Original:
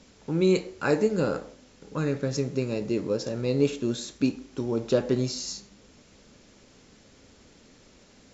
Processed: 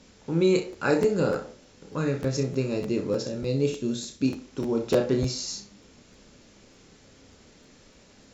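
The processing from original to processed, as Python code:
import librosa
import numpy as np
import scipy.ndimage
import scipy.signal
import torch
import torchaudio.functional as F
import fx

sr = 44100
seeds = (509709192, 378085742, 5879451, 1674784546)

y = fx.peak_eq(x, sr, hz=1100.0, db=-7.0, octaves=2.3, at=(3.27, 4.28))
y = fx.room_early_taps(y, sr, ms=(30, 63), db=(-6.5, -12.5))
y = fx.buffer_crackle(y, sr, first_s=0.72, period_s=0.3, block=512, kind='repeat')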